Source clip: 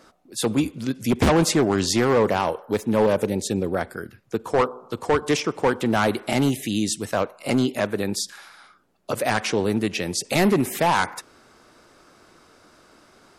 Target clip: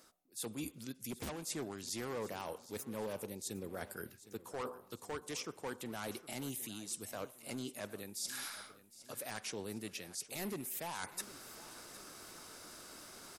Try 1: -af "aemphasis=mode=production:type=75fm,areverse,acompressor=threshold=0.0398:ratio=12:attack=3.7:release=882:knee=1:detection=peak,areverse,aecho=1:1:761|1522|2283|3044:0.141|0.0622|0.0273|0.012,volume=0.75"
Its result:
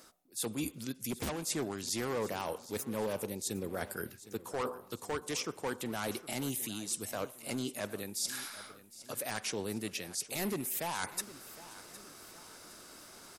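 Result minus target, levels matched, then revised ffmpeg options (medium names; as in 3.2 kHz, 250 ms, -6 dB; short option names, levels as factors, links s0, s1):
compression: peak gain reduction -6 dB
-af "aemphasis=mode=production:type=75fm,areverse,acompressor=threshold=0.0188:ratio=12:attack=3.7:release=882:knee=1:detection=peak,areverse,aecho=1:1:761|1522|2283|3044:0.141|0.0622|0.0273|0.012,volume=0.75"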